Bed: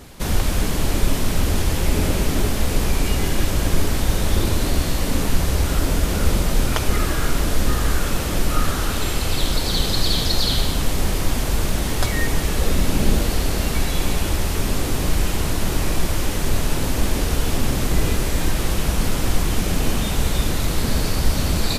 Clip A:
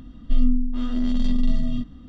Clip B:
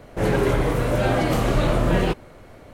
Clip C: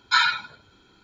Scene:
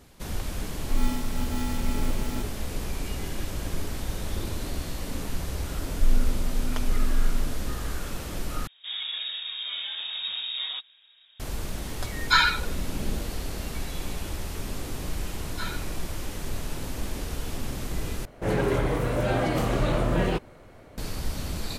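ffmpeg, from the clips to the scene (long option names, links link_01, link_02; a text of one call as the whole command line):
ffmpeg -i bed.wav -i cue0.wav -i cue1.wav -i cue2.wav -filter_complex "[1:a]asplit=2[link_01][link_02];[2:a]asplit=2[link_03][link_04];[3:a]asplit=2[link_05][link_06];[0:a]volume=-12dB[link_07];[link_01]acrusher=samples=40:mix=1:aa=0.000001[link_08];[link_02]aemphasis=mode=reproduction:type=bsi[link_09];[link_03]lowpass=frequency=3200:width_type=q:width=0.5098,lowpass=frequency=3200:width_type=q:width=0.6013,lowpass=frequency=3200:width_type=q:width=0.9,lowpass=frequency=3200:width_type=q:width=2.563,afreqshift=-3800[link_10];[link_07]asplit=3[link_11][link_12][link_13];[link_11]atrim=end=8.674[link_14];[link_10]atrim=end=2.73,asetpts=PTS-STARTPTS,volume=-13.5dB[link_15];[link_12]atrim=start=11.396:end=18.254[link_16];[link_04]atrim=end=2.73,asetpts=PTS-STARTPTS,volume=-4.5dB[link_17];[link_13]atrim=start=20.976[link_18];[link_08]atrim=end=2.08,asetpts=PTS-STARTPTS,volume=-8.5dB,afade=type=in:duration=0.004:curve=hsin,afade=type=out:start_time=2.076:duration=0.004:curve=hsin,adelay=590[link_19];[link_09]atrim=end=2.08,asetpts=PTS-STARTPTS,volume=-18dB,afade=type=in:duration=0.004:curve=hsin,afade=type=out:start_time=2.076:duration=0.004:curve=hsin,adelay=5710[link_20];[link_05]atrim=end=1.03,asetpts=PTS-STARTPTS,volume=-0.5dB,afade=type=in:duration=0.004:curve=hsin,afade=type=out:start_time=1.026:duration=0.004:curve=hsin,adelay=12190[link_21];[link_06]atrim=end=1.03,asetpts=PTS-STARTPTS,volume=-17.5dB,afade=type=in:duration=0.004:curve=hsin,afade=type=out:start_time=1.026:duration=0.004:curve=hsin,adelay=15460[link_22];[link_14][link_15]acrossfade=duration=0.004:curve1=hsin:curve2=hsin[link_23];[link_23][link_16]acrossfade=duration=0.004:curve1=hsin:curve2=hsin[link_24];[link_24][link_17]acrossfade=duration=0.004:curve1=hsin:curve2=hsin[link_25];[link_25][link_18]acrossfade=duration=0.004:curve1=hsin:curve2=hsin[link_26];[link_26][link_19][link_20][link_21][link_22]amix=inputs=5:normalize=0" out.wav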